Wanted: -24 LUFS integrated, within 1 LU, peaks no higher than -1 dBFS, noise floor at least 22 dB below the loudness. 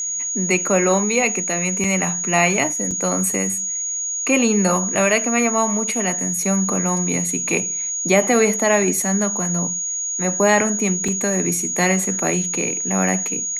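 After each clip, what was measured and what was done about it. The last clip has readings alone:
dropouts 3; longest dropout 4.3 ms; steady tone 6.7 kHz; tone level -22 dBFS; loudness -18.5 LUFS; peak level -3.0 dBFS; loudness target -24.0 LUFS
-> interpolate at 1.84/2.91/11.08 s, 4.3 ms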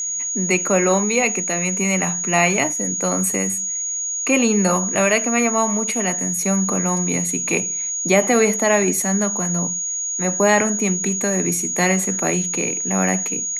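dropouts 0; steady tone 6.7 kHz; tone level -22 dBFS
-> band-stop 6.7 kHz, Q 30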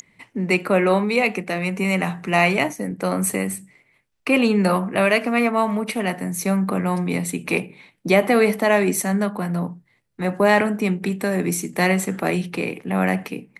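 steady tone not found; loudness -21.0 LUFS; peak level -3.0 dBFS; loudness target -24.0 LUFS
-> trim -3 dB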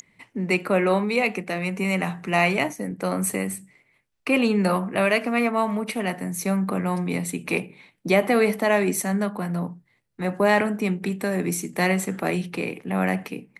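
loudness -24.0 LUFS; peak level -6.0 dBFS; noise floor -67 dBFS

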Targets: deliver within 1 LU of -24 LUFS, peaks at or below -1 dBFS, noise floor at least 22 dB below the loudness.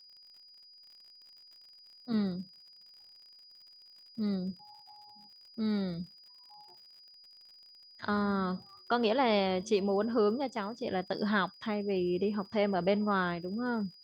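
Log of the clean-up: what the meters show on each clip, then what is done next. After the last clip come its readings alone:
tick rate 56 per s; steady tone 4.9 kHz; tone level -54 dBFS; loudness -32.0 LUFS; peak level -15.5 dBFS; loudness target -24.0 LUFS
-> de-click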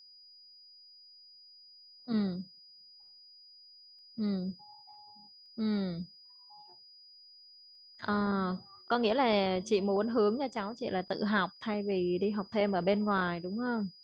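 tick rate 0.21 per s; steady tone 4.9 kHz; tone level -54 dBFS
-> band-stop 4.9 kHz, Q 30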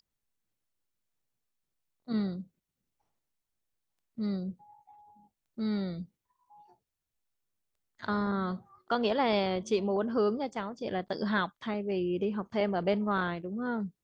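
steady tone not found; loudness -32.0 LUFS; peak level -15.5 dBFS; loudness target -24.0 LUFS
-> trim +8 dB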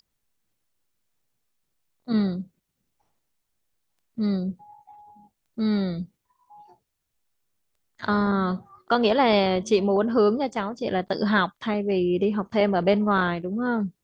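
loudness -24.0 LUFS; peak level -7.5 dBFS; noise floor -79 dBFS

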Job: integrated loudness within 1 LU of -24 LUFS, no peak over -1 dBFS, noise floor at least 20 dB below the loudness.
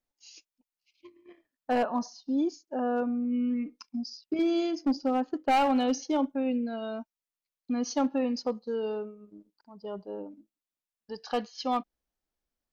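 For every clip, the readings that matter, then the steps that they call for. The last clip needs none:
clipped samples 0.7%; clipping level -20.5 dBFS; loudness -30.0 LUFS; peak level -20.5 dBFS; loudness target -24.0 LUFS
-> clip repair -20.5 dBFS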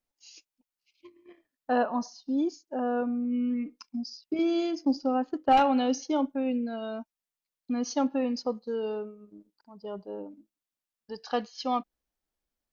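clipped samples 0.0%; loudness -29.5 LUFS; peak level -11.5 dBFS; loudness target -24.0 LUFS
-> trim +5.5 dB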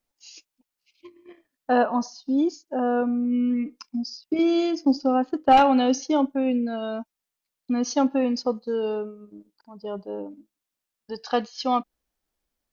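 loudness -24.0 LUFS; peak level -6.0 dBFS; noise floor -86 dBFS

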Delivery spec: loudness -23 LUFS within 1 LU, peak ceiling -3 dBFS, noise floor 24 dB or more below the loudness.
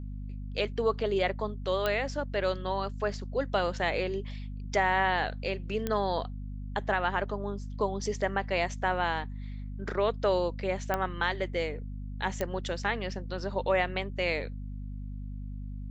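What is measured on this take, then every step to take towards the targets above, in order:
clicks found 4; hum 50 Hz; highest harmonic 250 Hz; hum level -35 dBFS; loudness -31.5 LUFS; peak level -12.5 dBFS; loudness target -23.0 LUFS
-> de-click; de-hum 50 Hz, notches 5; trim +8.5 dB

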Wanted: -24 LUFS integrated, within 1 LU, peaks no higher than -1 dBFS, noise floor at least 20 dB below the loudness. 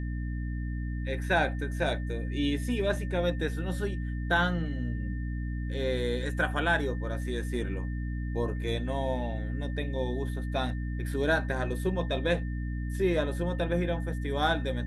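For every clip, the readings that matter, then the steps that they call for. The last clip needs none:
hum 60 Hz; highest harmonic 300 Hz; hum level -30 dBFS; steady tone 1.8 kHz; tone level -48 dBFS; loudness -31.0 LUFS; peak level -12.0 dBFS; loudness target -24.0 LUFS
-> de-hum 60 Hz, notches 5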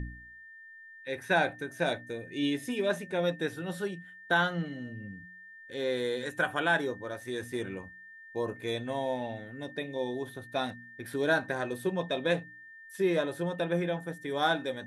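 hum not found; steady tone 1.8 kHz; tone level -48 dBFS
-> band-stop 1.8 kHz, Q 30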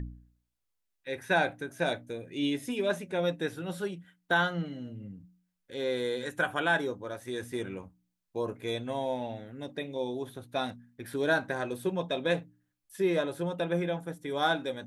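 steady tone not found; loudness -32.0 LUFS; peak level -13.5 dBFS; loudness target -24.0 LUFS
-> trim +8 dB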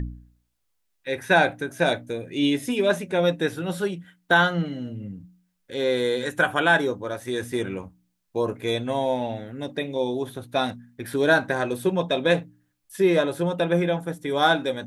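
loudness -24.0 LUFS; peak level -5.5 dBFS; noise floor -73 dBFS

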